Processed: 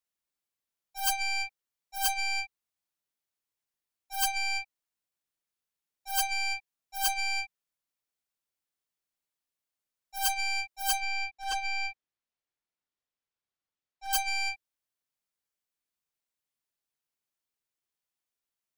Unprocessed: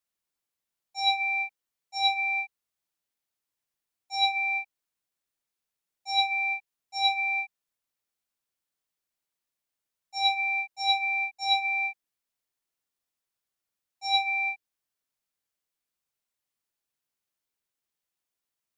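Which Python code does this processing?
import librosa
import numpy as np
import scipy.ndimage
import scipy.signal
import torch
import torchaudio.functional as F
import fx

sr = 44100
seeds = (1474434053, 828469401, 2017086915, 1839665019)

y = fx.tracing_dist(x, sr, depth_ms=0.44)
y = fx.air_absorb(y, sr, metres=100.0, at=(11.0, 14.13))
y = F.gain(torch.from_numpy(y), -3.5).numpy()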